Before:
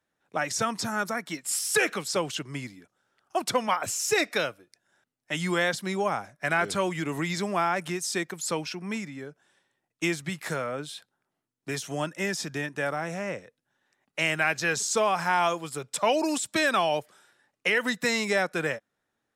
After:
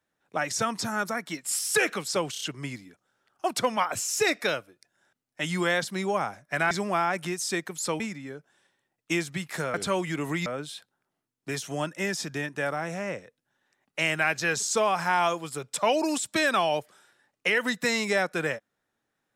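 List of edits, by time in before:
2.32 s: stutter 0.03 s, 4 plays
6.62–7.34 s: move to 10.66 s
8.63–8.92 s: delete

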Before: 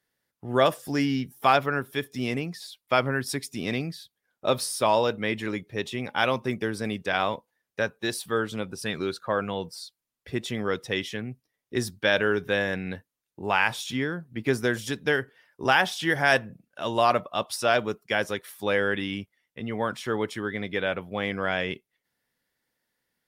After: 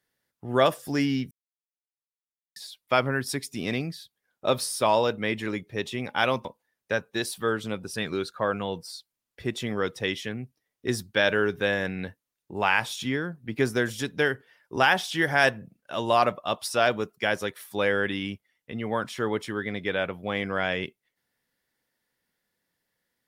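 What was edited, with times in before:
1.31–2.56 s: mute
6.45–7.33 s: delete

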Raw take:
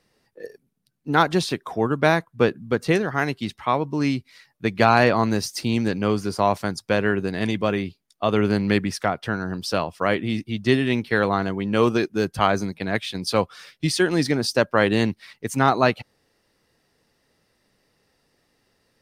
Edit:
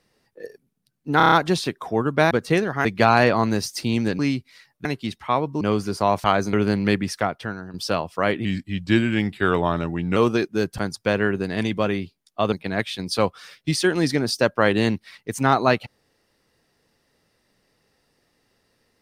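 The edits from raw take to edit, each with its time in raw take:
1.17 s: stutter 0.03 s, 6 plays
2.16–2.69 s: delete
3.23–3.99 s: swap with 4.65–5.99 s
6.62–8.36 s: swap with 12.39–12.68 s
9.06–9.57 s: fade out, to -12 dB
10.28–11.77 s: speed 87%

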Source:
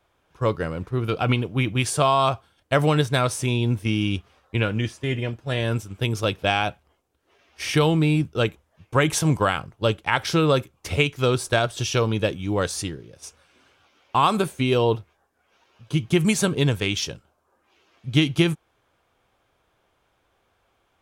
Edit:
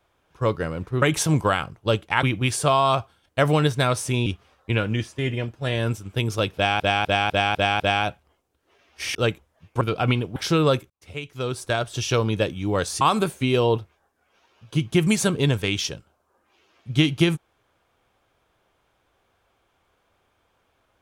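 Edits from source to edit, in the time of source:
1.02–1.57 s: swap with 8.98–10.19 s
3.60–4.11 s: delete
6.40–6.65 s: loop, 6 plays
7.75–8.32 s: delete
10.73–11.97 s: fade in
12.84–14.19 s: delete

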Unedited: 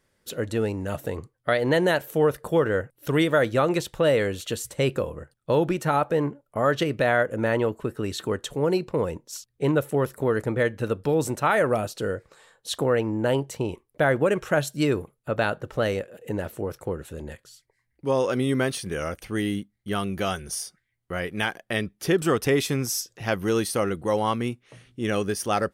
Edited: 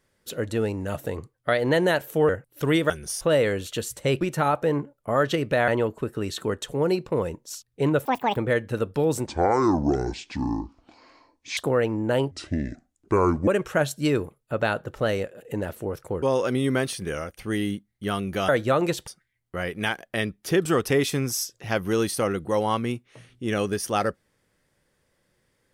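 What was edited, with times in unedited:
2.29–2.75 s: delete
3.36–3.95 s: swap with 20.33–20.64 s
4.95–5.69 s: delete
7.16–7.50 s: delete
9.87–10.46 s: speed 187%
11.36–12.72 s: speed 59%
13.46–14.24 s: speed 67%
16.99–18.07 s: delete
18.95–19.23 s: fade out, to -8.5 dB

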